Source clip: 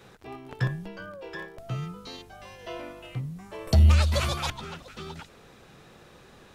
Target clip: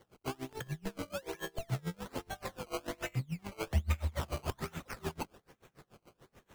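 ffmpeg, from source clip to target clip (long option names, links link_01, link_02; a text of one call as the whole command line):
ffmpeg -i in.wav -filter_complex "[0:a]agate=range=-13dB:threshold=-49dB:ratio=16:detection=peak,acompressor=threshold=-40dB:ratio=3,acrusher=samples=17:mix=1:aa=0.000001:lfo=1:lforange=17:lforate=1.2,asettb=1/sr,asplit=3[link_01][link_02][link_03];[link_01]atrim=end=2.924[link_04];[link_02]atrim=start=2.92:end=4.21,asetpts=PTS-STARTPTS,afade=type=in:duration=0.004:curve=qsin,afade=type=out:start_time=1.286:duration=0.004:curve=qsin,equalizer=frequency=2200:width=4.6:gain=6[link_05];[link_03]atrim=start=4.206[link_06];[link_04][link_05]acrossfade=duration=0.004:curve1=hsin:curve2=qsin[link_07];[link_07][link_06]acrossfade=duration=0.004:curve1=qsin:curve2=hsin,aeval=exprs='val(0)*pow(10,-29*(0.5-0.5*cos(2*PI*6.9*n/s))/20)':channel_layout=same,volume=9.5dB" out.wav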